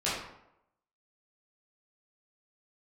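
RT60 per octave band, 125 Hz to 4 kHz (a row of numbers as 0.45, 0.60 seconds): 0.75, 0.80, 0.85, 0.80, 0.65, 0.50 seconds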